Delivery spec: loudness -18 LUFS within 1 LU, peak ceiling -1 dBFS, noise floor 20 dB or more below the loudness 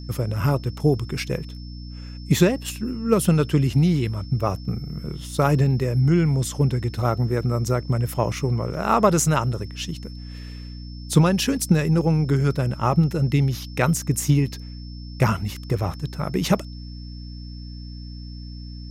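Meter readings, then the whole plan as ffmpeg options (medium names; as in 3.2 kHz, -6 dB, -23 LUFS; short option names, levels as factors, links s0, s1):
hum 60 Hz; highest harmonic 300 Hz; hum level -33 dBFS; steady tone 5.3 kHz; tone level -46 dBFS; loudness -22.0 LUFS; peak level -3.5 dBFS; loudness target -18.0 LUFS
-> -af "bandreject=f=60:t=h:w=4,bandreject=f=120:t=h:w=4,bandreject=f=180:t=h:w=4,bandreject=f=240:t=h:w=4,bandreject=f=300:t=h:w=4"
-af "bandreject=f=5300:w=30"
-af "volume=1.58,alimiter=limit=0.891:level=0:latency=1"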